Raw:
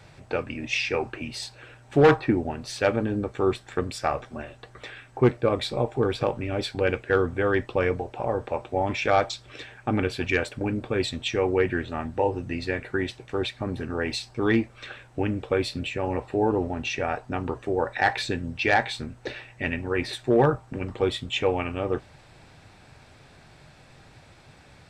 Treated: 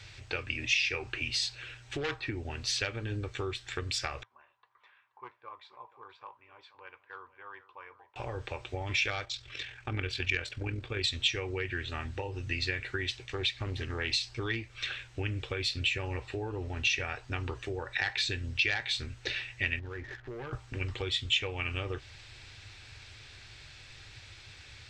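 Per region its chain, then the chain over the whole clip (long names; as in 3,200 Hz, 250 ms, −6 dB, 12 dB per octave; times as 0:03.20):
0:04.23–0:08.16: resonant band-pass 1,000 Hz, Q 11 + single-tap delay 479 ms −17.5 dB
0:09.25–0:11.04: high-shelf EQ 4,100 Hz −5.5 dB + amplitude modulation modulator 43 Hz, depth 35%
0:13.25–0:14.25: notch filter 1,500 Hz, Q 10 + highs frequency-modulated by the lows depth 0.21 ms
0:19.79–0:20.53: Butterworth low-pass 1,800 Hz 48 dB per octave + leveller curve on the samples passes 1 + downward compressor 4 to 1, threshold −35 dBFS
whole clip: high-shelf EQ 2,500 Hz +10 dB; downward compressor 6 to 1, threshold −26 dBFS; drawn EQ curve 110 Hz 0 dB, 170 Hz −18 dB, 380 Hz −8 dB, 660 Hz −14 dB, 2,000 Hz −2 dB, 3,000 Hz 0 dB, 6,800 Hz −5 dB, 9,800 Hz −17 dB; level +2 dB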